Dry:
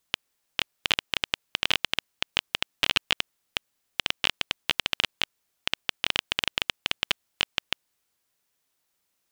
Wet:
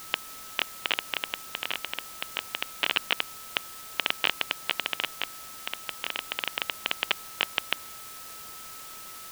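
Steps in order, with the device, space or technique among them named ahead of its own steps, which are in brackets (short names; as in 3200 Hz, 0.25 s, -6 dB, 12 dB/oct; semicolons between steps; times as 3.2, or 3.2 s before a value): shortwave radio (BPF 290–3000 Hz; tremolo 0.26 Hz, depth 60%; whine 1300 Hz -51 dBFS; white noise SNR 9 dB); gain +3 dB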